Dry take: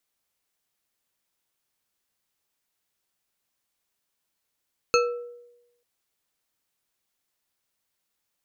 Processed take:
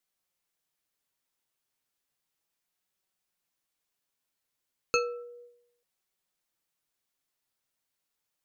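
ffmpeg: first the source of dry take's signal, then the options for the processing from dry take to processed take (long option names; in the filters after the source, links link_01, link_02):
-f lavfi -i "aevalsrc='0.141*pow(10,-3*t/0.94)*sin(2*PI*481*t)+0.112*pow(10,-3*t/0.462)*sin(2*PI*1326.1*t)+0.0891*pow(10,-3*t/0.289)*sin(2*PI*2599.3*t)+0.0708*pow(10,-3*t/0.203)*sin(2*PI*4296.8*t)+0.0562*pow(10,-3*t/0.153)*sin(2*PI*6416.5*t)':duration=0.89:sample_rate=44100"
-af "flanger=delay=5.3:depth=2.4:regen=61:speed=0.33:shape=sinusoidal"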